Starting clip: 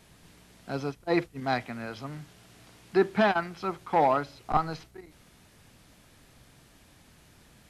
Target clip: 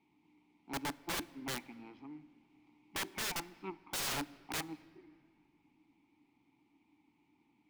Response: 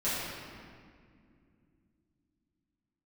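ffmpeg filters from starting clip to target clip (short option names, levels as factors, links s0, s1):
-filter_complex "[0:a]aeval=exprs='0.316*(cos(1*acos(clip(val(0)/0.316,-1,1)))-cos(1*PI/2))+0.0355*(cos(5*acos(clip(val(0)/0.316,-1,1)))-cos(5*PI/2))+0.0447*(cos(6*acos(clip(val(0)/0.316,-1,1)))-cos(6*PI/2))+0.0501*(cos(7*acos(clip(val(0)/0.316,-1,1)))-cos(7*PI/2))':c=same,asplit=3[s0][s1][s2];[s0]bandpass=f=300:t=q:w=8,volume=1[s3];[s1]bandpass=f=870:t=q:w=8,volume=0.501[s4];[s2]bandpass=f=2240:t=q:w=8,volume=0.355[s5];[s3][s4][s5]amix=inputs=3:normalize=0,aeval=exprs='(mod(70.8*val(0)+1,2)-1)/70.8':c=same,asplit=2[s6][s7];[1:a]atrim=start_sample=2205[s8];[s7][s8]afir=irnorm=-1:irlink=0,volume=0.0447[s9];[s6][s9]amix=inputs=2:normalize=0,volume=1.78"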